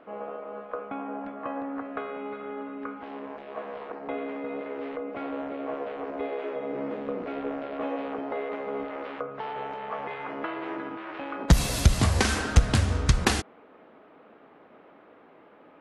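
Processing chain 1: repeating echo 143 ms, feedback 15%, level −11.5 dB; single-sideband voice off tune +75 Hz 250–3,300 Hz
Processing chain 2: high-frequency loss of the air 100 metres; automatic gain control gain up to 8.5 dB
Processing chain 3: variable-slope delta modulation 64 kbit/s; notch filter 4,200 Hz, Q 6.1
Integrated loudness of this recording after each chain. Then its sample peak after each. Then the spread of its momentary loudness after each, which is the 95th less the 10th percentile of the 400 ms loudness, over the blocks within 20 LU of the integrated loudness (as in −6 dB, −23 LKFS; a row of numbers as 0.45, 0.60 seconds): −33.5, −24.0, −30.5 LKFS; −8.0, −2.0, −7.5 dBFS; 9, 12, 14 LU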